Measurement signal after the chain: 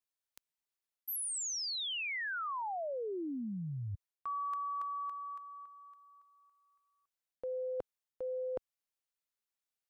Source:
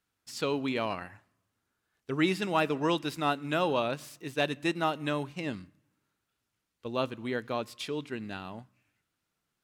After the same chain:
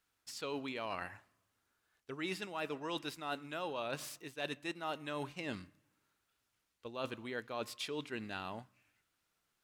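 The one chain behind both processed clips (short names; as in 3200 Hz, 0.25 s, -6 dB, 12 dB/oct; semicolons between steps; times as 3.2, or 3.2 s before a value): bell 160 Hz -7 dB 2.5 oct; reverse; compressor 8:1, threshold -38 dBFS; reverse; gain +1.5 dB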